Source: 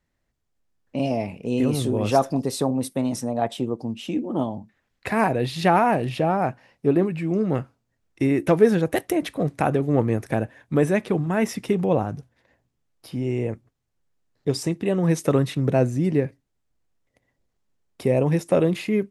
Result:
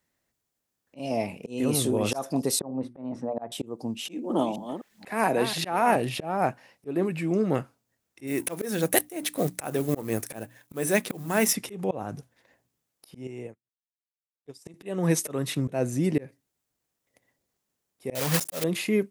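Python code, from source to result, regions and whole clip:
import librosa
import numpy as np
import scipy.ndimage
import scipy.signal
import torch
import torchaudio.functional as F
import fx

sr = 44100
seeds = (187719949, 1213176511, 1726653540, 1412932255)

y = fx.chain(x, sr, fx.lowpass(hz=1300.0, slope=12),
    fx.hum_notches(base_hz=60, count=6), at=(2.59, 3.52))
y = fx.chain(y, sr, fx.reverse_delay(ms=255, wet_db=-13.0),
    fx.peak_eq(hz=100.0, db=-12.5, octaves=0.74),
    fx.band_squash(depth_pct=40), at=(4.05, 5.96))
y = fx.chain(y, sr, fx.law_mismatch(coded='A'),
    fx.high_shelf(hz=4100.0, db=9.5),
    fx.hum_notches(base_hz=60, count=5), at=(8.27, 11.53))
y = fx.chain(y, sr, fx.highpass(hz=45.0, slope=12),
    fx.upward_expand(threshold_db=-41.0, expansion=2.5), at=(13.27, 14.74))
y = fx.chain(y, sr, fx.block_float(bits=3),
    fx.peak_eq(hz=350.0, db=-13.0, octaves=0.43), at=(18.15, 18.64))
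y = fx.highpass(y, sr, hz=200.0, slope=6)
y = fx.high_shelf(y, sr, hz=7100.0, db=12.0)
y = fx.auto_swell(y, sr, attack_ms=247.0)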